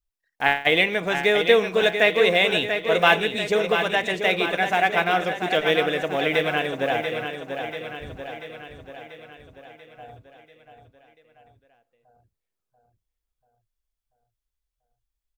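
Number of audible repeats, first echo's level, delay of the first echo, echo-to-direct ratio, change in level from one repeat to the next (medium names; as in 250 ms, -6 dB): 6, -7.5 dB, 688 ms, -6.0 dB, -5.0 dB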